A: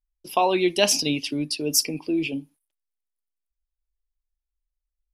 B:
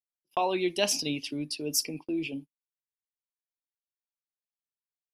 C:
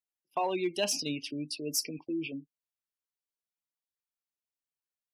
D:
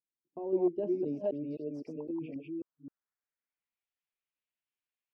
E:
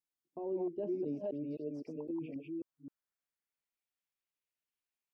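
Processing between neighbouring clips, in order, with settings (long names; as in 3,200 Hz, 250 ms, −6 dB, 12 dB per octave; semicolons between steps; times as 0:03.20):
noise gate −34 dBFS, range −37 dB; level −7 dB
gate on every frequency bin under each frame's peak −25 dB strong; in parallel at −7 dB: gain into a clipping stage and back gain 22 dB; on the sum: level −6 dB
delay that plays each chunk backwards 262 ms, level −1.5 dB; low-pass filter sweep 310 Hz → 2,700 Hz, 0:00.30–0:03.91; level −4.5 dB
brickwall limiter −27.5 dBFS, peak gain reduction 8.5 dB; level −2 dB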